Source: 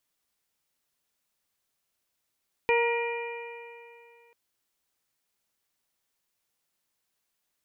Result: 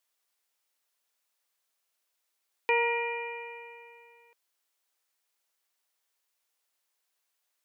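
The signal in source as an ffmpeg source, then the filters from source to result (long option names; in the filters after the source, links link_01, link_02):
-f lavfi -i "aevalsrc='0.0794*pow(10,-3*t/2.54)*sin(2*PI*468.47*t)+0.0501*pow(10,-3*t/2.54)*sin(2*PI*939.74*t)+0.00794*pow(10,-3*t/2.54)*sin(2*PI*1416.58*t)+0.0266*pow(10,-3*t/2.54)*sin(2*PI*1901.72*t)+0.0562*pow(10,-3*t/2.54)*sin(2*PI*2397.79*t)+0.00794*pow(10,-3*t/2.54)*sin(2*PI*2907.33*t)':duration=1.64:sample_rate=44100"
-af "highpass=480"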